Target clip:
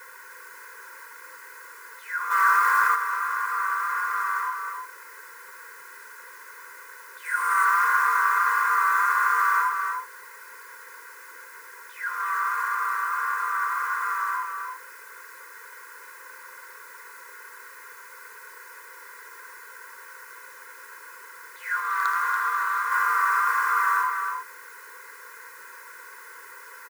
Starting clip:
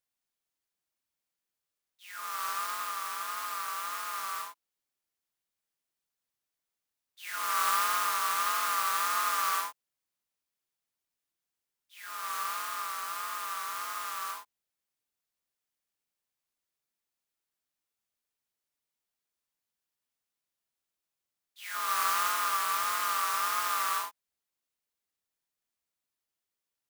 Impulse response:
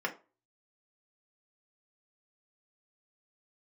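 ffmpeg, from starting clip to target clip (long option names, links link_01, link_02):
-filter_complex "[0:a]aeval=exprs='val(0)+0.5*0.0168*sgn(val(0))':channel_layout=same,asuperstop=centerf=690:order=20:qfactor=2,highshelf=frequency=2300:width_type=q:width=3:gain=-11,aecho=1:1:2:0.87,aecho=1:1:313:0.531,asettb=1/sr,asplit=3[link_01][link_02][link_03];[link_01]atrim=end=21.804[link_04];[link_02]atrim=start=21.8:end=22.92,asetpts=PTS-STARTPTS,afade=type=in:duration=0.004:curve=qsin,afade=type=out:start_time=1.116:duration=0.004:curve=qsin,aeval=exprs='0.282*(cos(1*acos(clip(val(0)/0.282,-1,1)))-cos(1*PI/2))+0.0631*(cos(3*acos(clip(val(0)/0.282,-1,1)))-cos(3*PI/2))+0.0224*(cos(5*acos(clip(val(0)/0.282,-1,1)))-cos(5*PI/2))':channel_layout=same[link_05];[link_03]atrim=start=22.916[link_06];[link_04][link_05]acrossfade=duration=0.004:curve1=hsin:curve2=qsin[link_07];[link_07][link_06]acrossfade=duration=0.004:curve1=qsin:curve2=hsin,highpass=520,asplit=3[link_08][link_09][link_10];[link_08]afade=type=out:start_time=2.3:duration=0.02[link_11];[link_09]acontrast=67,afade=type=in:start_time=2.3:duration=0.02,afade=type=out:start_time=2.94:duration=0.02[link_12];[link_10]afade=type=in:start_time=2.94:duration=0.02[link_13];[link_11][link_12][link_13]amix=inputs=3:normalize=0,asettb=1/sr,asplit=3[link_14][link_15][link_16];[link_14]atrim=end=7.254[link_17];[link_15]atrim=start=7.25:end=7.65,asetpts=PTS-STARTPTS,afade=type=in:duration=0.004:curve=qsin,afade=type=out:start_time=0.396:duration=0.004:curve=qsin,equalizer=frequency=9000:width_type=o:width=0.25:gain=12[link_18];[link_16]atrim=start=7.646[link_19];[link_17][link_18]acrossfade=duration=0.004:curve1=hsin:curve2=qsin[link_20];[link_20][link_19]acrossfade=duration=0.004:curve1=qsin:curve2=hsin,asplit=2[link_21][link_22];[1:a]atrim=start_sample=2205[link_23];[link_22][link_23]afir=irnorm=-1:irlink=0,volume=-17dB[link_24];[link_21][link_24]amix=inputs=2:normalize=0"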